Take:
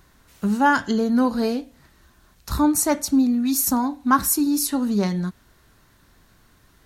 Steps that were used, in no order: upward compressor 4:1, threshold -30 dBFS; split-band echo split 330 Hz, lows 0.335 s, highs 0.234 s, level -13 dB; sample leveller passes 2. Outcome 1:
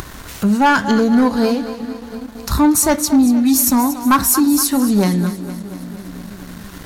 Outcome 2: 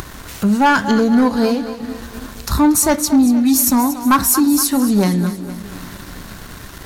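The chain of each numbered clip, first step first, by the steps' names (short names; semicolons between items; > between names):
split-band echo > upward compressor > sample leveller; upward compressor > split-band echo > sample leveller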